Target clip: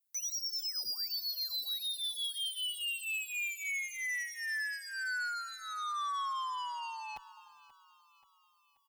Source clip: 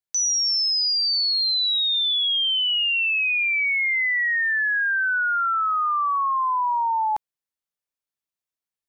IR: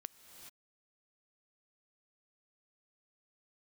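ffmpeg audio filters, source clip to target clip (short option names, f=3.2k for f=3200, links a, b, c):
-filter_complex "[0:a]aemphasis=mode=production:type=75fm,acrossover=split=5800[a][b];[b]acompressor=threshold=-32dB:ratio=4:attack=1:release=60[c];[a][c]amix=inputs=2:normalize=0,lowshelf=f=130:g=7,asoftclip=type=tanh:threshold=-30dB,aecho=1:1:532|1064|1596|2128|2660:0.112|0.0617|0.0339|0.0187|0.0103,asplit=2[d][e];[1:a]atrim=start_sample=2205,lowshelf=f=190:g=-11[f];[e][f]afir=irnorm=-1:irlink=0,volume=-5.5dB[g];[d][g]amix=inputs=2:normalize=0,asplit=2[h][i];[i]adelay=7.4,afreqshift=-1.8[j];[h][j]amix=inputs=2:normalize=1,volume=-6dB"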